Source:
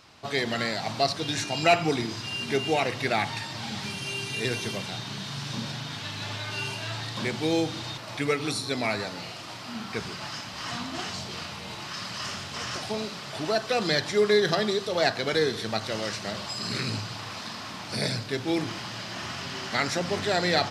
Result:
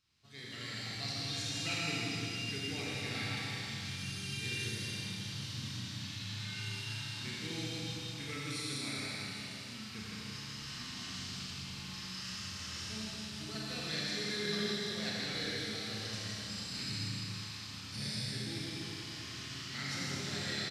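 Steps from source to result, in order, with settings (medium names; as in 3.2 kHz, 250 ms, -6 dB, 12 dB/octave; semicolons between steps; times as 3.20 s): amplifier tone stack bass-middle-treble 6-0-2; level rider gain up to 10 dB; delay 160 ms -4.5 dB; Schroeder reverb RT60 3 s, combs from 29 ms, DRR -5.5 dB; trim -8.5 dB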